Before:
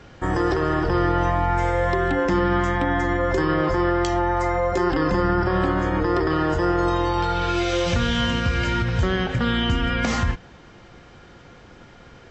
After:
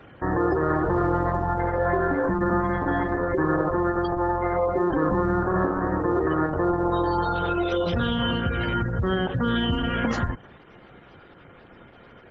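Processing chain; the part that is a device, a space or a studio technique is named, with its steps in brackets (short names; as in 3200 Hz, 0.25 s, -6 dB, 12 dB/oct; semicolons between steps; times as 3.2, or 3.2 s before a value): dynamic EQ 2200 Hz, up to -5 dB, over -43 dBFS, Q 3.2; noise-suppressed video call (HPF 100 Hz 6 dB/oct; spectral gate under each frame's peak -20 dB strong; Opus 12 kbps 48000 Hz)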